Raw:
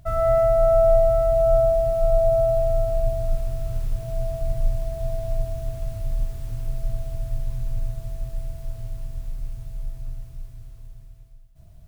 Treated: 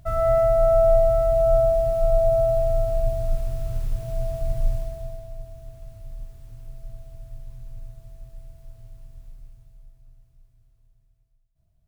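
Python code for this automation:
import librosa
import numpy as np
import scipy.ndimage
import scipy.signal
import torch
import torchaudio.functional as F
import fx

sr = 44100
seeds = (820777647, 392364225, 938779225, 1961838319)

y = fx.gain(x, sr, db=fx.line((4.74, -0.5), (5.31, -12.0), (9.29, -12.0), (9.97, -19.0)))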